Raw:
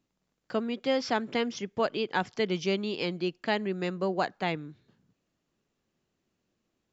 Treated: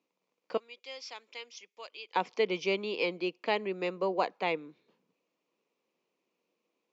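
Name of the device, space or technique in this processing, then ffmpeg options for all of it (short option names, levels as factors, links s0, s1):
television speaker: -filter_complex "[0:a]asettb=1/sr,asplit=3[s0][s1][s2];[s0]atrim=end=0.574[s3];[s1]atrim=start=0.57:end=2.16,asetpts=PTS-STARTPTS,afade=t=in:d=0.004:c=qsin,afade=t=out:st=1.586:d=0.004:c=qsin,aderivative[s4];[s2]atrim=start=2.156[s5];[s3][s4]acrossfade=d=0.004:c1=hsin:c2=qsin[s6];[s6][s5]acrossfade=d=0.004:c1=qsin:c2=hsin,highpass=f=210:w=0.5412,highpass=f=210:w=1.3066,equalizer=f=230:t=q:w=4:g=-4,equalizer=f=490:t=q:w=4:g=9,equalizer=f=1000:t=q:w=4:g=8,equalizer=f=1600:t=q:w=4:g=-7,equalizer=f=2400:t=q:w=4:g=9,lowpass=f=6700:w=0.5412,lowpass=f=6700:w=1.3066,volume=0.668"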